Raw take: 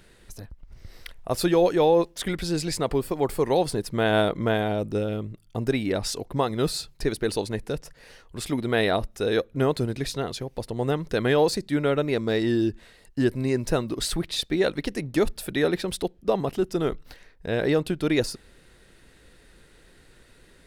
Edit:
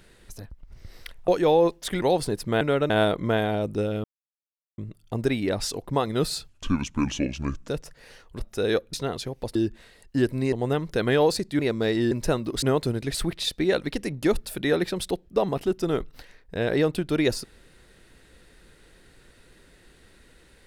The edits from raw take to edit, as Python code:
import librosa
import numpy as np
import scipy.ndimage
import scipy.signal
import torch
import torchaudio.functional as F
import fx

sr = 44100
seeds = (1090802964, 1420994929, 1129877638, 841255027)

y = fx.edit(x, sr, fx.cut(start_s=1.28, length_s=0.34),
    fx.cut(start_s=2.36, length_s=1.12),
    fx.insert_silence(at_s=5.21, length_s=0.74),
    fx.speed_span(start_s=6.91, length_s=0.77, speed=0.64),
    fx.cut(start_s=8.39, length_s=0.63),
    fx.move(start_s=9.56, length_s=0.52, to_s=14.06),
    fx.move(start_s=11.77, length_s=0.29, to_s=4.07),
    fx.move(start_s=12.58, length_s=0.97, to_s=10.7), tone=tone)